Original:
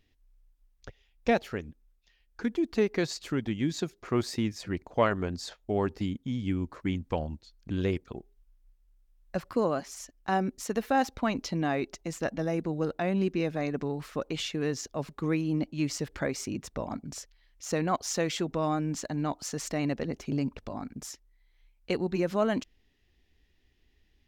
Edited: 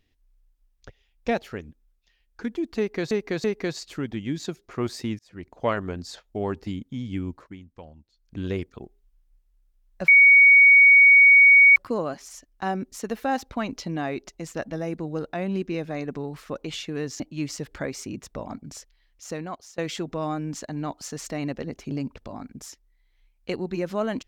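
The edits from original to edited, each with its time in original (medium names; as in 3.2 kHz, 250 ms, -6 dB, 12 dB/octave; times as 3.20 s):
2.78–3.11 s: loop, 3 plays
4.53–4.96 s: fade in
6.64–7.73 s: dip -13.5 dB, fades 0.26 s
9.42 s: add tone 2.24 kHz -9.5 dBFS 1.68 s
14.86–15.61 s: delete
17.19–18.19 s: fade out equal-power, to -24 dB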